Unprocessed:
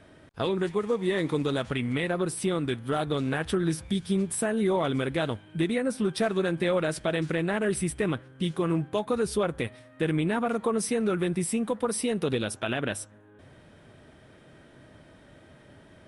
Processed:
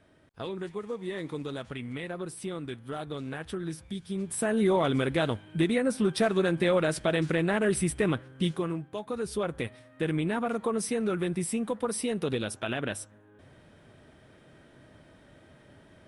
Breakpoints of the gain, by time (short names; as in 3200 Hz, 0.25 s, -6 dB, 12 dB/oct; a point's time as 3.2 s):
4.1 s -8.5 dB
4.53 s +1 dB
8.47 s +1 dB
8.83 s -9.5 dB
9.58 s -2.5 dB